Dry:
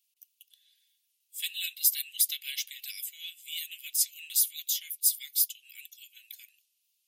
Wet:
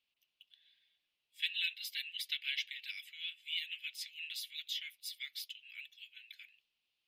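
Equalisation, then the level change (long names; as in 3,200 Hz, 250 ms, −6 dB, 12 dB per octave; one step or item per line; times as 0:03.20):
high-frequency loss of the air 390 metres
high-shelf EQ 9,700 Hz −7 dB
+8.0 dB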